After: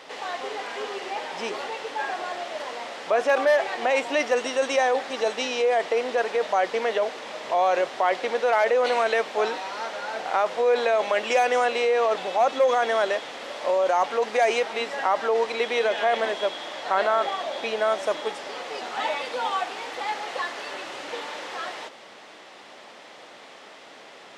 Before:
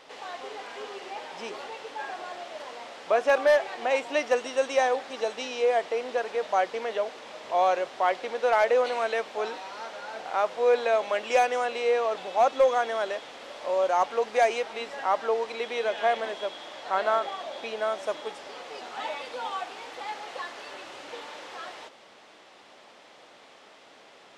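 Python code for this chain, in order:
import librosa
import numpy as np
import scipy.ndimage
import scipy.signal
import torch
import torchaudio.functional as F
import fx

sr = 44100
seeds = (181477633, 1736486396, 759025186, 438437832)

p1 = scipy.signal.sosfilt(scipy.signal.butter(2, 98.0, 'highpass', fs=sr, output='sos'), x)
p2 = fx.peak_eq(p1, sr, hz=1900.0, db=2.5, octaves=0.27)
p3 = fx.over_compress(p2, sr, threshold_db=-27.0, ratio=-0.5)
y = p2 + (p3 * librosa.db_to_amplitude(-2.5))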